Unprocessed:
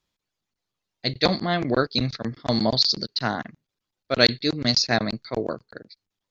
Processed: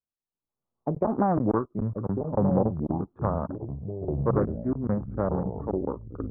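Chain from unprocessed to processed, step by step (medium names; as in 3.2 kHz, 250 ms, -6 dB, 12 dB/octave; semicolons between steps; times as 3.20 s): Doppler pass-by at 1.33 s, 57 m/s, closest 4.1 m; recorder AGC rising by 22 dB/s; steep low-pass 1.2 kHz 48 dB/octave; in parallel at -1 dB: compression, threshold -35 dBFS, peak gain reduction 15 dB; on the sum: ever faster or slower copies 726 ms, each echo -6 st, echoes 3, each echo -6 dB; loudspeaker Doppler distortion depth 0.3 ms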